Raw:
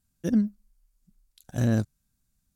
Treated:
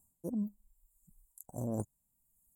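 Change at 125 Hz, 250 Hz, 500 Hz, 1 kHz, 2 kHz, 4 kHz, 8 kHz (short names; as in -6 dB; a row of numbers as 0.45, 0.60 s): -14.0 dB, -12.0 dB, -7.5 dB, -5.5 dB, under -30 dB, under -30 dB, -6.5 dB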